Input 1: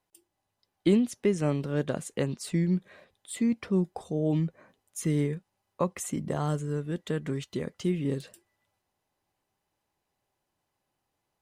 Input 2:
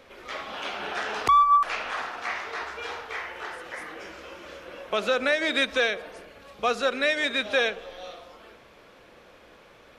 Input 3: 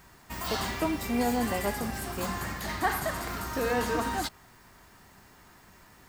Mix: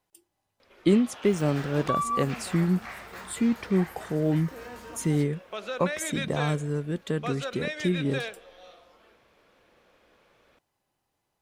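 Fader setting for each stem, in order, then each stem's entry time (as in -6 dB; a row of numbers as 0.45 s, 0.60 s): +2.0 dB, -10.0 dB, -15.0 dB; 0.00 s, 0.60 s, 0.95 s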